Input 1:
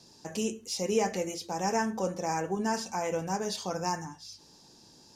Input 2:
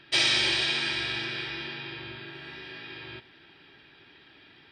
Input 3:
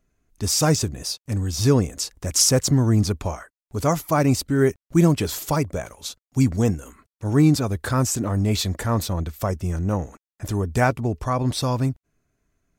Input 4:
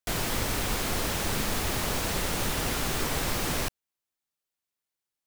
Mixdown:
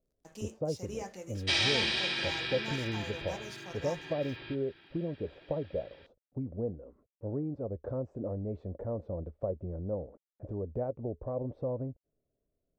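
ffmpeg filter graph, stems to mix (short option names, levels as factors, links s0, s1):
-filter_complex "[0:a]aeval=exprs='sgn(val(0))*max(abs(val(0))-0.00376,0)':c=same,volume=0.237[s0];[1:a]lowpass=7200,adelay=1350,volume=0.596[s1];[2:a]acompressor=threshold=0.0891:ratio=6,lowpass=f=540:t=q:w=4.7,volume=0.211[s2];[s0][s1][s2]amix=inputs=3:normalize=0"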